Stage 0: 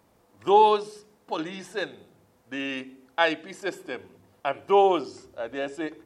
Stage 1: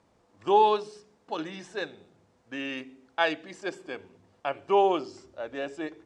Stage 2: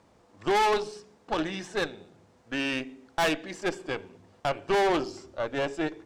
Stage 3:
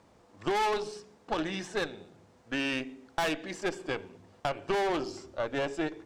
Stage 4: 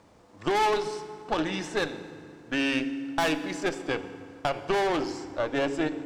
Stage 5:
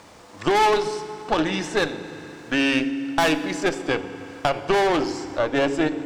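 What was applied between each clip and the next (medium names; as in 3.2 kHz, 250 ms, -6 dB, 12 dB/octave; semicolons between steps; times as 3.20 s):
low-pass 8 kHz 24 dB/octave; trim -3 dB
valve stage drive 30 dB, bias 0.7; trim +9 dB
compression, threshold -26 dBFS, peak gain reduction 5.5 dB
FDN reverb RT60 2.5 s, low-frequency decay 1.5×, high-frequency decay 0.65×, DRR 11 dB; trim +3.5 dB
tape noise reduction on one side only encoder only; trim +6 dB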